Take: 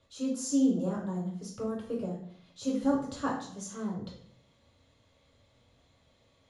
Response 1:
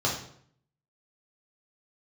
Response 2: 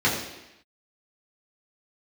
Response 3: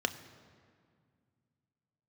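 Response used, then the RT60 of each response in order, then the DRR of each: 1; 0.60 s, 0.90 s, 2.0 s; -5.0 dB, -7.5 dB, 8.5 dB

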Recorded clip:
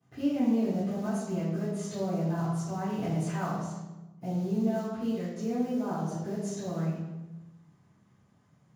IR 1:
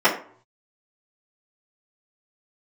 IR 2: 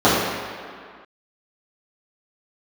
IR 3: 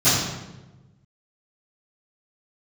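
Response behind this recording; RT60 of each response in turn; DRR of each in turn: 3; 0.50 s, 2.0 s, 1.1 s; -12.0 dB, -12.5 dB, -20.0 dB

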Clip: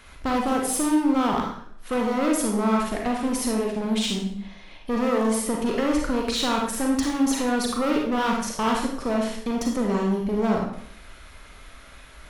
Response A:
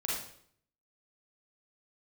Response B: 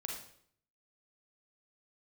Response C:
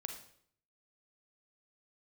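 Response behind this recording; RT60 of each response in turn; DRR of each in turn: B; 0.60 s, 0.60 s, 0.60 s; -5.5 dB, -0.5 dB, 4.0 dB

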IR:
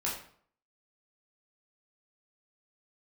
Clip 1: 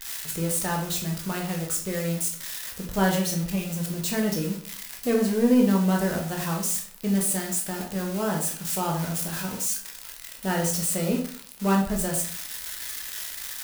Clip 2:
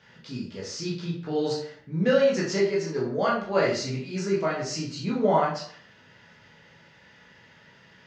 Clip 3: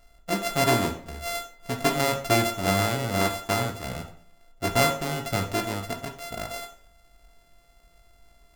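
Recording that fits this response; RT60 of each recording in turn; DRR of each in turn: 2; 0.55 s, 0.55 s, 0.55 s; -1.0 dB, -6.0 dB, 3.5 dB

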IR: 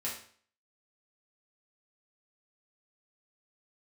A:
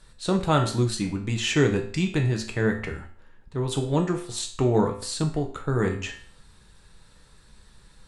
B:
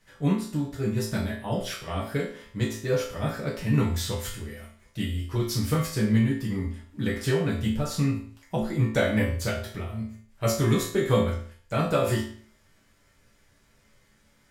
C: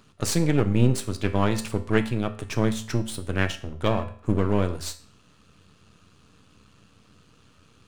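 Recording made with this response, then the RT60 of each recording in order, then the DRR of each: B; 0.50 s, 0.50 s, 0.50 s; 2.0 dB, -6.5 dB, 7.5 dB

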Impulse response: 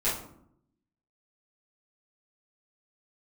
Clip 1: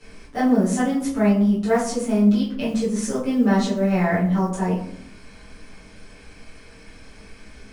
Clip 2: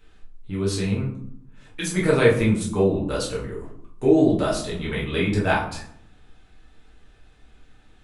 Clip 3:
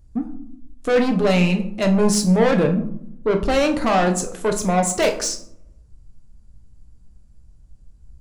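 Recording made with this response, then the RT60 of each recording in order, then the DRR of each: 1; 0.70 s, 0.70 s, 0.70 s; -12.5 dB, -6.0 dB, 3.5 dB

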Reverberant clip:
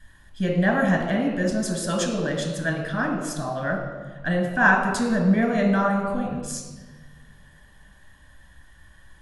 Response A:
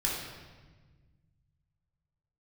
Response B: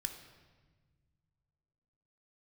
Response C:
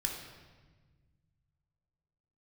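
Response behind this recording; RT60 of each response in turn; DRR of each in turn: C; 1.4 s, 1.5 s, 1.4 s; -4.0 dB, 6.0 dB, 1.0 dB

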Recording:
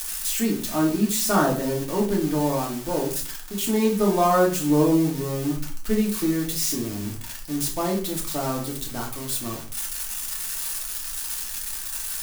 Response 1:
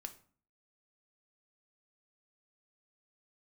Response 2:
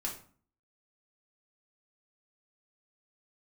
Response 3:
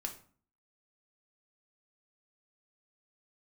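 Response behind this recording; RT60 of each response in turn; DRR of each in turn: 2; 0.45 s, 0.45 s, 0.45 s; 6.5 dB, -2.5 dB, 2.5 dB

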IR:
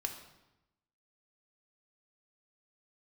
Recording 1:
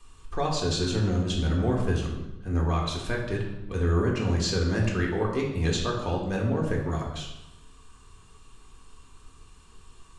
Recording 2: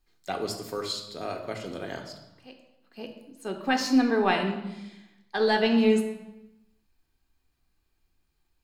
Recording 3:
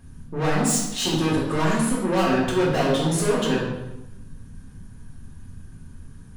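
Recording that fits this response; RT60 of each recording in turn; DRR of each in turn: 2; 0.95 s, 0.95 s, 0.95 s; -2.0 dB, 3.5 dB, -7.0 dB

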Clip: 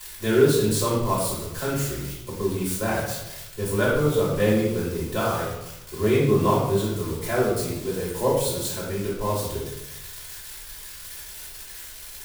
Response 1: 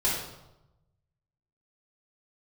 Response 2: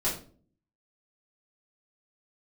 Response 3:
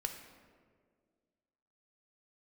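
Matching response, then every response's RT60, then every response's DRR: 1; 0.95 s, 0.45 s, 1.9 s; -8.0 dB, -9.0 dB, 4.5 dB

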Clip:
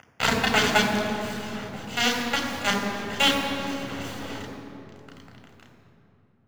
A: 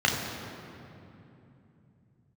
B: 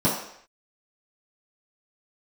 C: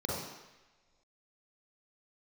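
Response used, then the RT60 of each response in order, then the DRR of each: A; 2.9 s, no single decay rate, no single decay rate; -1.5 dB, -10.5 dB, -5.5 dB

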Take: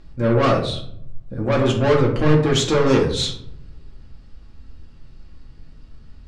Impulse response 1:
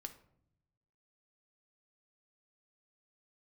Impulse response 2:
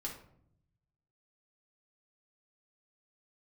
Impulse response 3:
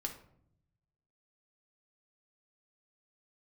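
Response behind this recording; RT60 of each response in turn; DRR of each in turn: 2; no single decay rate, 0.65 s, 0.65 s; 6.5 dB, -2.5 dB, 2.0 dB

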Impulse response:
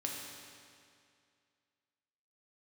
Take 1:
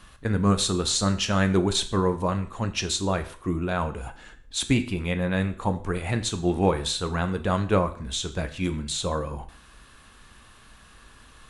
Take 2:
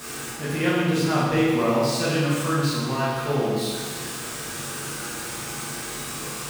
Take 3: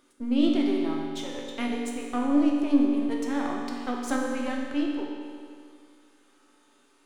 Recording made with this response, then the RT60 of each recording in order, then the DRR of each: 3; 0.50 s, 1.6 s, 2.3 s; 7.5 dB, -9.5 dB, -2.0 dB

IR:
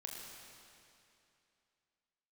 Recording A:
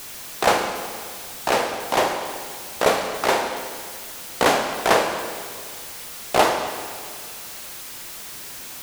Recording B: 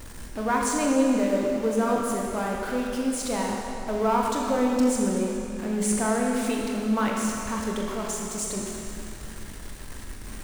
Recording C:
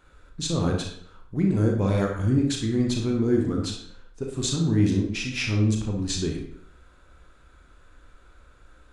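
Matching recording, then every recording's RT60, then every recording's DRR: B; 2.0 s, 2.7 s, 0.60 s; 5.0 dB, -1.5 dB, 0.5 dB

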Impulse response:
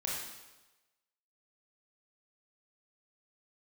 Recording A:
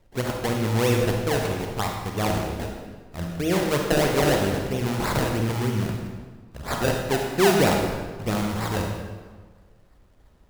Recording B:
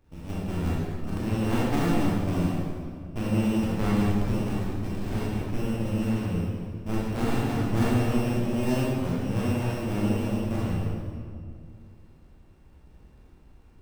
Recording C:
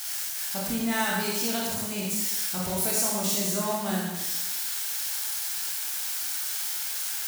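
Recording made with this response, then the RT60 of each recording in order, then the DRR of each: C; 1.5 s, 2.2 s, 1.1 s; 1.0 dB, -7.5 dB, -4.5 dB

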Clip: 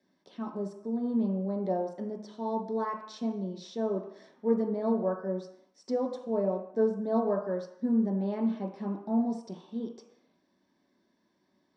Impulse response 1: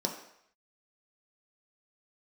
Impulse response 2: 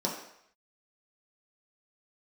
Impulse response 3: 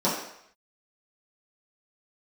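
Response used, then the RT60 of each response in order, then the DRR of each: 1; 0.70 s, 0.70 s, 0.70 s; 1.0 dB, -3.5 dB, -10.0 dB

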